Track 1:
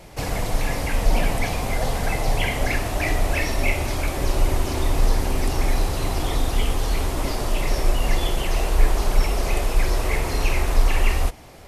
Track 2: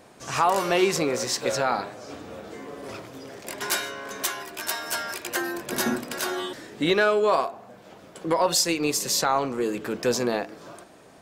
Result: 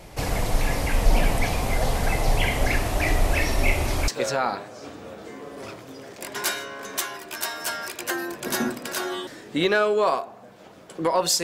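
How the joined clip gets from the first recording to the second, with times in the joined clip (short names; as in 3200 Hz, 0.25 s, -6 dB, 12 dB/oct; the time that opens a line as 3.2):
track 1
4.08 switch to track 2 from 1.34 s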